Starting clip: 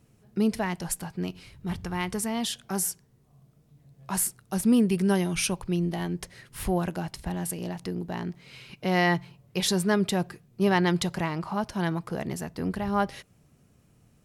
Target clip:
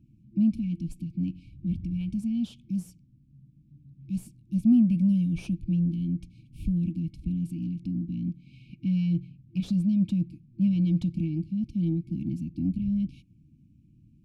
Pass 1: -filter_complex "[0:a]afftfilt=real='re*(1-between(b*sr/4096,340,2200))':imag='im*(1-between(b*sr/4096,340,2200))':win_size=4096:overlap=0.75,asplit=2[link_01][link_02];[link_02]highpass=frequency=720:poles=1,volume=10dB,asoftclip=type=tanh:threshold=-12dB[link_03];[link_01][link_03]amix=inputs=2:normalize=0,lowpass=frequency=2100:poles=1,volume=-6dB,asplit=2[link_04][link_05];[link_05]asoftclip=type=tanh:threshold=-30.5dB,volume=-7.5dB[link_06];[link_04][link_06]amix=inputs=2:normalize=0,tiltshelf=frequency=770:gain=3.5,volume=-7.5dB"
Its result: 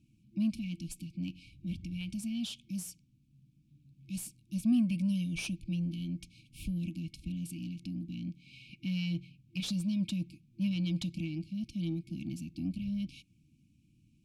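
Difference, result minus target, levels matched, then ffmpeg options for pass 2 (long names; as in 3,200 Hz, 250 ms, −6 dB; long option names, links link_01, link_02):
1,000 Hz band +8.5 dB
-filter_complex "[0:a]afftfilt=real='re*(1-between(b*sr/4096,340,2200))':imag='im*(1-between(b*sr/4096,340,2200))':win_size=4096:overlap=0.75,asplit=2[link_01][link_02];[link_02]highpass=frequency=720:poles=1,volume=10dB,asoftclip=type=tanh:threshold=-12dB[link_03];[link_01][link_03]amix=inputs=2:normalize=0,lowpass=frequency=2100:poles=1,volume=-6dB,asplit=2[link_04][link_05];[link_05]asoftclip=type=tanh:threshold=-30.5dB,volume=-7.5dB[link_06];[link_04][link_06]amix=inputs=2:normalize=0,tiltshelf=frequency=770:gain=13.5,volume=-7.5dB"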